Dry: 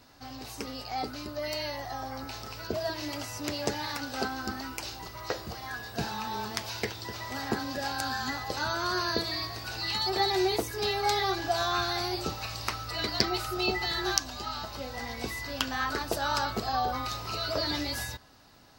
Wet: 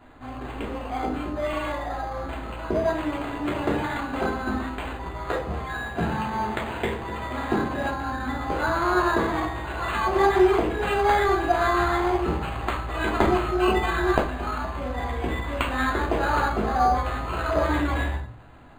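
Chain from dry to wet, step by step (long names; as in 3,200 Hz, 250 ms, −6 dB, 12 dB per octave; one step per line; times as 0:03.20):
0:07.87–0:08.41: head-to-tape spacing loss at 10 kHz 23 dB
rectangular room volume 430 cubic metres, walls furnished, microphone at 3.1 metres
linearly interpolated sample-rate reduction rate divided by 8×
level +2.5 dB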